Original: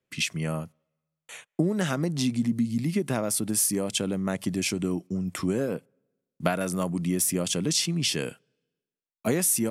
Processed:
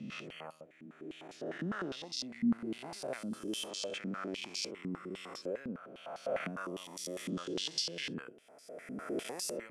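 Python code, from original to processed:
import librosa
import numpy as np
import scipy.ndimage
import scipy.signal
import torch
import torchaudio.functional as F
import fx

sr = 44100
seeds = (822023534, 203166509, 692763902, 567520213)

y = fx.spec_swells(x, sr, rise_s=2.11)
y = fx.filter_held_bandpass(y, sr, hz=9.9, low_hz=230.0, high_hz=4800.0)
y = y * librosa.db_to_amplitude(-4.5)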